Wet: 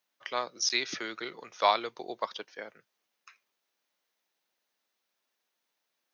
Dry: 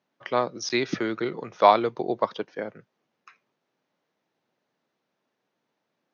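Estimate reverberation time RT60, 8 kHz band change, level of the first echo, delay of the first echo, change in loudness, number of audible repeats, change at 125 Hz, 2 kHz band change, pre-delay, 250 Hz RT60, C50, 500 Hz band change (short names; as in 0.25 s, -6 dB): none, n/a, none, none, -6.5 dB, none, under -15 dB, -2.5 dB, none, none, none, -11.0 dB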